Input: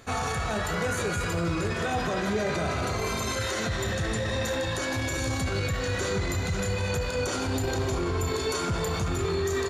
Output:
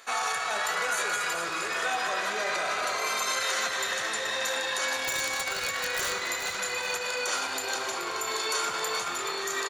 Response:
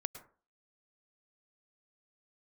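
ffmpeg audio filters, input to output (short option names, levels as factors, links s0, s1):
-filter_complex "[0:a]highpass=870,asettb=1/sr,asplit=3[s0][s1][s2];[s0]atrim=end=5.034[s3];[s1]atrim=start=5.03:end=6.26,asetpts=PTS-STARTPTS,afade=t=in:d=0.004:c=qsin,afade=t=out:st=1.226:d=0.004:c=qsin,aeval=exprs='(mod(16.8*val(0)+1,2)-1)/16.8':c=same[s4];[s2]atrim=start=6.256[s5];[s3][s4]acrossfade=d=0.004:c1=hsin:c2=qsin[s6];[s6][s5]acrossfade=d=0.004:c1=qsin:c2=hsin,aecho=1:1:428|856|1284|1712|2140:0.355|0.16|0.0718|0.0323|0.0145,asplit=2[s7][s8];[1:a]atrim=start_sample=2205,lowshelf=f=170:g=5[s9];[s8][s9]afir=irnorm=-1:irlink=0,volume=1.58[s10];[s7][s10]amix=inputs=2:normalize=0,volume=0.631"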